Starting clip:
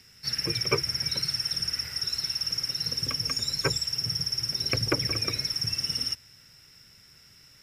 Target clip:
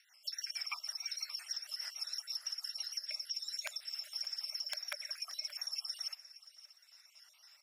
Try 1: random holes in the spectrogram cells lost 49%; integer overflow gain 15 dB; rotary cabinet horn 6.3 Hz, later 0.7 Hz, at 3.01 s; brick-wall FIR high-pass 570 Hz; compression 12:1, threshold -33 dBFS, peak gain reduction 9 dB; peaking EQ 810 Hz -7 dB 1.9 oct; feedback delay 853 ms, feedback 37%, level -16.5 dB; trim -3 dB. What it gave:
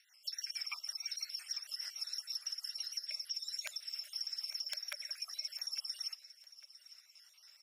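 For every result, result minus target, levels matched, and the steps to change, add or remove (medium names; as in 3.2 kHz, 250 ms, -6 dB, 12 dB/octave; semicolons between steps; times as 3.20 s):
echo 276 ms late; 1 kHz band -5.0 dB
change: feedback delay 577 ms, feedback 37%, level -16.5 dB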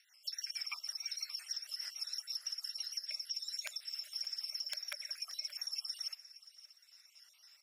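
1 kHz band -5.0 dB
remove: peaking EQ 810 Hz -7 dB 1.9 oct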